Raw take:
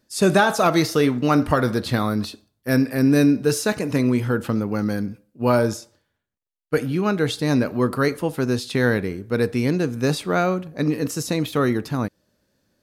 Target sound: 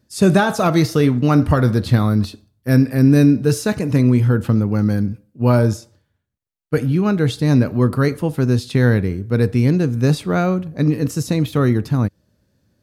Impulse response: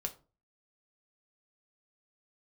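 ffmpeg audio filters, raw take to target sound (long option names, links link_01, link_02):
-af "equalizer=frequency=91:width=0.53:gain=13,volume=-1dB"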